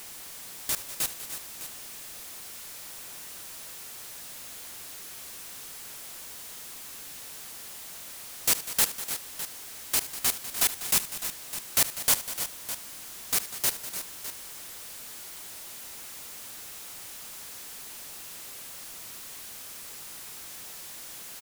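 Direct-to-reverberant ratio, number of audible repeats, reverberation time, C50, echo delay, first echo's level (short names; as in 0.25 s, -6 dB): none, 4, none, none, 74 ms, -15.0 dB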